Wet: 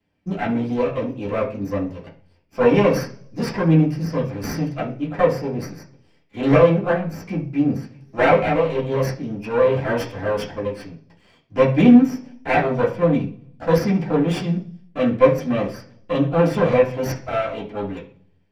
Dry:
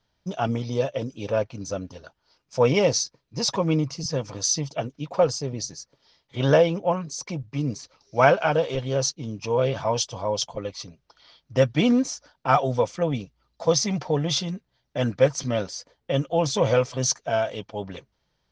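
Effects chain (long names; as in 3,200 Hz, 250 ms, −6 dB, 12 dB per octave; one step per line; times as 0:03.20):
lower of the sound and its delayed copy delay 0.39 ms
high-shelf EQ 3,200 Hz −8.5 dB
convolution reverb RT60 0.45 s, pre-delay 3 ms, DRR −6.5 dB
level −3.5 dB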